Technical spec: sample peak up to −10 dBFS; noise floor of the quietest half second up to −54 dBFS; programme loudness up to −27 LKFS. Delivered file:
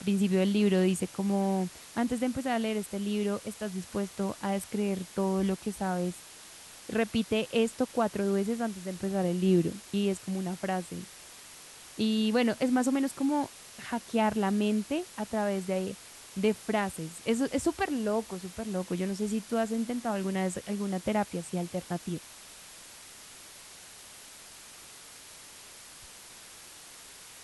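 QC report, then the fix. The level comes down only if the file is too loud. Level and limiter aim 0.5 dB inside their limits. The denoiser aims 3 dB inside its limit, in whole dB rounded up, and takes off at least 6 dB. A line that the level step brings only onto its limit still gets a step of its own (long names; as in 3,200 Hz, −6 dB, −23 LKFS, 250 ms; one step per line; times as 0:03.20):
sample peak −15.0 dBFS: in spec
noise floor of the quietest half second −50 dBFS: out of spec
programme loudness −30.5 LKFS: in spec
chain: broadband denoise 7 dB, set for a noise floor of −50 dBFS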